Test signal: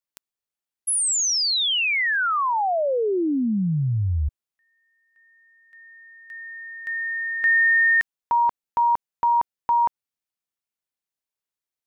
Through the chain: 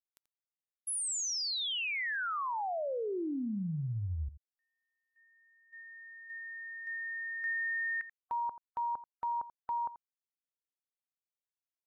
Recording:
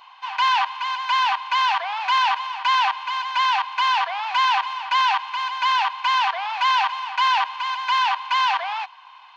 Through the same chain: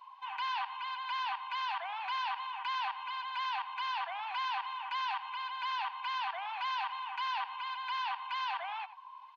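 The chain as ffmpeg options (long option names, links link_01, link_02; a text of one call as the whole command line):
ffmpeg -i in.wav -af "afftdn=noise_reduction=16:noise_floor=-38,acompressor=threshold=-43dB:ratio=2:attack=0.41:release=110:detection=rms,aecho=1:1:85:0.168,volume=-1dB" out.wav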